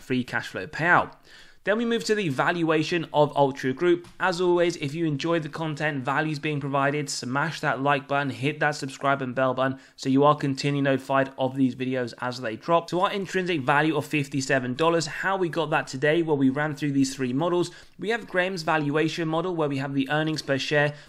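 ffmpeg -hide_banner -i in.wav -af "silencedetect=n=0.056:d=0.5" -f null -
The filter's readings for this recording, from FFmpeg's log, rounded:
silence_start: 1.05
silence_end: 1.67 | silence_duration: 0.62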